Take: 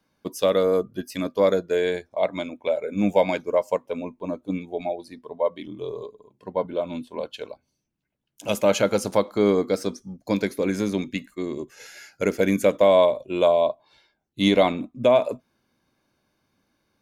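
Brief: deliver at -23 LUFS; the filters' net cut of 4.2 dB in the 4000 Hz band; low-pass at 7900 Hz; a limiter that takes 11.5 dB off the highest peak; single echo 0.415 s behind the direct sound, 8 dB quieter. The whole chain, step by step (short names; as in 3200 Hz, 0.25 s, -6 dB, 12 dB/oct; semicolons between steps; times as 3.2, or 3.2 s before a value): LPF 7900 Hz; bell 4000 Hz -5 dB; limiter -18.5 dBFS; echo 0.415 s -8 dB; gain +7 dB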